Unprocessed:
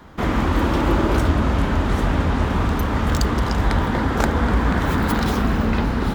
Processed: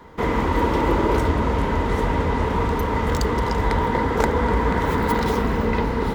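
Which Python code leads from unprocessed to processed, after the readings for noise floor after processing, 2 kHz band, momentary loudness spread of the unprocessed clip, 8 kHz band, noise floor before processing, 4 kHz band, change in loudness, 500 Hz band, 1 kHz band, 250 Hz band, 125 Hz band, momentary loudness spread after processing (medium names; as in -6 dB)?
-24 dBFS, -1.5 dB, 2 LU, -3.5 dB, -23 dBFS, -3.5 dB, -1.0 dB, +3.0 dB, +2.0 dB, -2.5 dB, -3.5 dB, 2 LU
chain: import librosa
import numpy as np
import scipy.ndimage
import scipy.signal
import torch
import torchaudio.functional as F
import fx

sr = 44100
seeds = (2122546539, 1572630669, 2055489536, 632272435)

y = fx.small_body(x, sr, hz=(460.0, 940.0, 2000.0), ring_ms=40, db=12)
y = y * 10.0 ** (-3.5 / 20.0)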